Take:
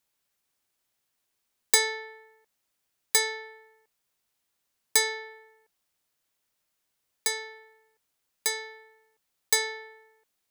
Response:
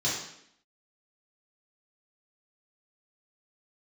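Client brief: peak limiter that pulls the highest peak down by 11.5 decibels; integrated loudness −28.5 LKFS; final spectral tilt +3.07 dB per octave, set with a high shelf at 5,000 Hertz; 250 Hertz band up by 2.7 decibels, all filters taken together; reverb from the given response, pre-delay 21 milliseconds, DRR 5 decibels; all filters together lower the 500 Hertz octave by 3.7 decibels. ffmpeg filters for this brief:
-filter_complex "[0:a]equalizer=frequency=250:width_type=o:gain=8.5,equalizer=frequency=500:width_type=o:gain=-7,highshelf=frequency=5000:gain=6,alimiter=limit=-12.5dB:level=0:latency=1,asplit=2[link_01][link_02];[1:a]atrim=start_sample=2205,adelay=21[link_03];[link_02][link_03]afir=irnorm=-1:irlink=0,volume=-14dB[link_04];[link_01][link_04]amix=inputs=2:normalize=0,volume=-0.5dB"

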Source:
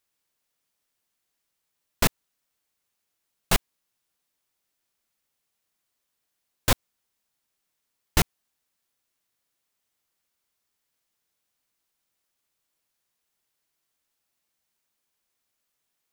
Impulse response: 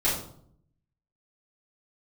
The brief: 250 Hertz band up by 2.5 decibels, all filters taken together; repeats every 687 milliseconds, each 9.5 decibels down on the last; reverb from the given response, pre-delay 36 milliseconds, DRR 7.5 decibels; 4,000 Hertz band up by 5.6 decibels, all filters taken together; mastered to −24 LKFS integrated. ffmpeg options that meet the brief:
-filter_complex "[0:a]equalizer=frequency=250:width_type=o:gain=3.5,equalizer=frequency=4000:width_type=o:gain=7,aecho=1:1:687|1374|2061|2748:0.335|0.111|0.0365|0.012,asplit=2[link_01][link_02];[1:a]atrim=start_sample=2205,adelay=36[link_03];[link_02][link_03]afir=irnorm=-1:irlink=0,volume=-19dB[link_04];[link_01][link_04]amix=inputs=2:normalize=0,volume=3dB"

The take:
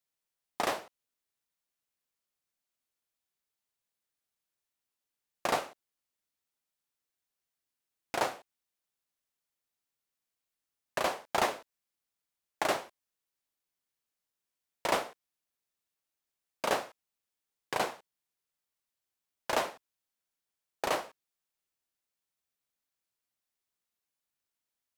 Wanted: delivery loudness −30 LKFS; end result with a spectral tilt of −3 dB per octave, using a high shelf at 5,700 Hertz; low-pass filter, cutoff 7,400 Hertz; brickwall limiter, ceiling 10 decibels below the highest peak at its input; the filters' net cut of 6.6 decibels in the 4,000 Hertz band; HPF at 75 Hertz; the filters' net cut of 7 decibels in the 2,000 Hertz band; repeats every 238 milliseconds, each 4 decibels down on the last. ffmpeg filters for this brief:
ffmpeg -i in.wav -af "highpass=75,lowpass=7400,equalizer=frequency=2000:width_type=o:gain=-8,equalizer=frequency=4000:width_type=o:gain=-7.5,highshelf=frequency=5700:gain=5,alimiter=level_in=1.5dB:limit=-24dB:level=0:latency=1,volume=-1.5dB,aecho=1:1:238|476|714|952|1190|1428|1666|1904|2142:0.631|0.398|0.25|0.158|0.0994|0.0626|0.0394|0.0249|0.0157,volume=12dB" out.wav

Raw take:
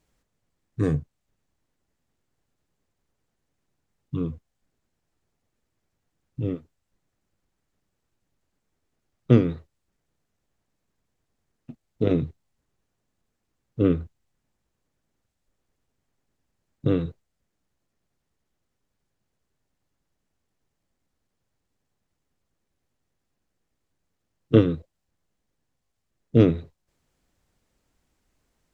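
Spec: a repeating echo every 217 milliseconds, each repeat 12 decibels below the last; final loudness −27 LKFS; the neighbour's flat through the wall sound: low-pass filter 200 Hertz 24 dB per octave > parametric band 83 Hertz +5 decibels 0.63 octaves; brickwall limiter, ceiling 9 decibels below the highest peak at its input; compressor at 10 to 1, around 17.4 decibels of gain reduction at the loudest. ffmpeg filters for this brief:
ffmpeg -i in.wav -af "acompressor=threshold=-28dB:ratio=10,alimiter=limit=-22.5dB:level=0:latency=1,lowpass=frequency=200:width=0.5412,lowpass=frequency=200:width=1.3066,equalizer=frequency=83:width_type=o:width=0.63:gain=5,aecho=1:1:217|434|651:0.251|0.0628|0.0157,volume=13.5dB" out.wav

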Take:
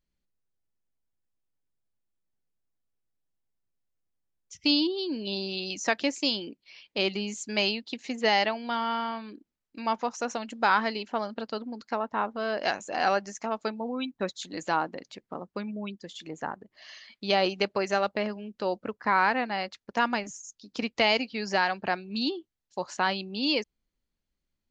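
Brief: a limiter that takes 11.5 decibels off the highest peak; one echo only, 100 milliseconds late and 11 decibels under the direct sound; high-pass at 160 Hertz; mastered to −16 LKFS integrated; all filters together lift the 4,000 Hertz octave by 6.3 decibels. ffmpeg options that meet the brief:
ffmpeg -i in.wav -af "highpass=160,equalizer=frequency=4000:width_type=o:gain=8,alimiter=limit=-17dB:level=0:latency=1,aecho=1:1:100:0.282,volume=14.5dB" out.wav

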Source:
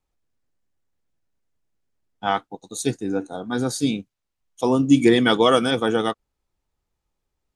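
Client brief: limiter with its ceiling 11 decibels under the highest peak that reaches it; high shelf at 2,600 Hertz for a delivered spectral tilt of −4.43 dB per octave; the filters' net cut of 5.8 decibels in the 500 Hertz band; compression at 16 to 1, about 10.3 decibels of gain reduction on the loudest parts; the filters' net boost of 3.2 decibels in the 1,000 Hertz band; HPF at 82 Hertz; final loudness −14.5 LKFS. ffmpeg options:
ffmpeg -i in.wav -af "highpass=82,equalizer=frequency=500:width_type=o:gain=-9,equalizer=frequency=1000:width_type=o:gain=7.5,highshelf=frequency=2600:gain=-4,acompressor=threshold=-22dB:ratio=16,volume=19.5dB,alimiter=limit=-3dB:level=0:latency=1" out.wav

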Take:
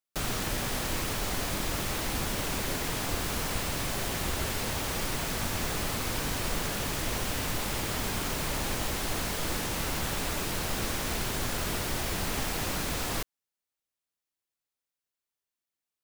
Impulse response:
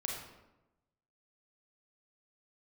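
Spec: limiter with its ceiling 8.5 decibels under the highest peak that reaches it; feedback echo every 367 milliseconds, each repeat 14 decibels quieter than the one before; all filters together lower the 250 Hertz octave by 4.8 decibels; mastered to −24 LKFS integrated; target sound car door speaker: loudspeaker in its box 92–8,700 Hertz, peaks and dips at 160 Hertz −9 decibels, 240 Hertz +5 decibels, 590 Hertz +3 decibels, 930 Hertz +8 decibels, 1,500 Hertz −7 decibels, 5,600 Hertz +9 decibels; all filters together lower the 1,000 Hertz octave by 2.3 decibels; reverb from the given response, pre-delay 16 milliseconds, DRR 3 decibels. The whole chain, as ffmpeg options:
-filter_complex "[0:a]equalizer=frequency=250:width_type=o:gain=-7,equalizer=frequency=1000:width_type=o:gain=-7,alimiter=level_in=2.5dB:limit=-24dB:level=0:latency=1,volume=-2.5dB,aecho=1:1:367|734:0.2|0.0399,asplit=2[link_01][link_02];[1:a]atrim=start_sample=2205,adelay=16[link_03];[link_02][link_03]afir=irnorm=-1:irlink=0,volume=-5dB[link_04];[link_01][link_04]amix=inputs=2:normalize=0,highpass=92,equalizer=frequency=160:width_type=q:width=4:gain=-9,equalizer=frequency=240:width_type=q:width=4:gain=5,equalizer=frequency=590:width_type=q:width=4:gain=3,equalizer=frequency=930:width_type=q:width=4:gain=8,equalizer=frequency=1500:width_type=q:width=4:gain=-7,equalizer=frequency=5600:width_type=q:width=4:gain=9,lowpass=frequency=8700:width=0.5412,lowpass=frequency=8700:width=1.3066,volume=9.5dB"

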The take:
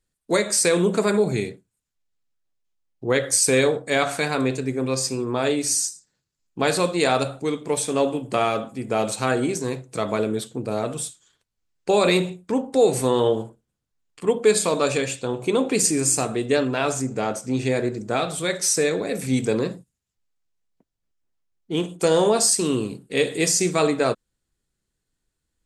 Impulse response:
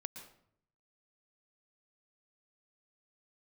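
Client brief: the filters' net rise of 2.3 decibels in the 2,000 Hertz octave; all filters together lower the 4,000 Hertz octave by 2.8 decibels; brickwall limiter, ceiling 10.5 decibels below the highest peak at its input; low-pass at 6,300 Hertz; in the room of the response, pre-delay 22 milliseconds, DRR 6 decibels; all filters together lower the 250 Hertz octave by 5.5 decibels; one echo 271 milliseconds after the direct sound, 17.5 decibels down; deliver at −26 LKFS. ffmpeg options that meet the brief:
-filter_complex "[0:a]lowpass=6300,equalizer=frequency=250:width_type=o:gain=-7.5,equalizer=frequency=2000:width_type=o:gain=4,equalizer=frequency=4000:width_type=o:gain=-3.5,alimiter=limit=-15.5dB:level=0:latency=1,aecho=1:1:271:0.133,asplit=2[link_01][link_02];[1:a]atrim=start_sample=2205,adelay=22[link_03];[link_02][link_03]afir=irnorm=-1:irlink=0,volume=-3dB[link_04];[link_01][link_04]amix=inputs=2:normalize=0,volume=0.5dB"

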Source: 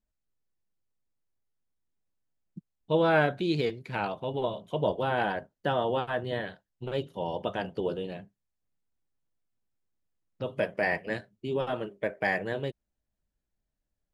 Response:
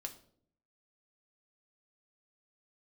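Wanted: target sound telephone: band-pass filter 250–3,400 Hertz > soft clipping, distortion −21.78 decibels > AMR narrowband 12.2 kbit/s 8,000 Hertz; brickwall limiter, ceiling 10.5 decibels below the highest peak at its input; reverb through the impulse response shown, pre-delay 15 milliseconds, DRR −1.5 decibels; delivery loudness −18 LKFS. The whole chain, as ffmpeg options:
-filter_complex "[0:a]alimiter=limit=-23.5dB:level=0:latency=1,asplit=2[link_01][link_02];[1:a]atrim=start_sample=2205,adelay=15[link_03];[link_02][link_03]afir=irnorm=-1:irlink=0,volume=4dB[link_04];[link_01][link_04]amix=inputs=2:normalize=0,highpass=250,lowpass=3400,asoftclip=threshold=-20dB,volume=15.5dB" -ar 8000 -c:a libopencore_amrnb -b:a 12200

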